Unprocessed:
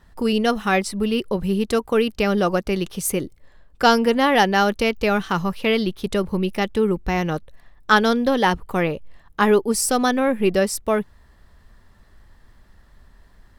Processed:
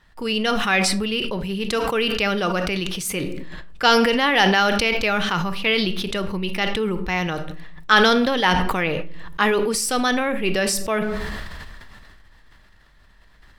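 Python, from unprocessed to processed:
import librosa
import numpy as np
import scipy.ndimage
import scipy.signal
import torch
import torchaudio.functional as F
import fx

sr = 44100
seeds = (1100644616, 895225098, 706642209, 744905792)

y = fx.peak_eq(x, sr, hz=2700.0, db=10.5, octaves=2.4)
y = fx.room_shoebox(y, sr, seeds[0], volume_m3=710.0, walls='furnished', distance_m=0.55)
y = fx.sustainer(y, sr, db_per_s=22.0)
y = F.gain(torch.from_numpy(y), -6.5).numpy()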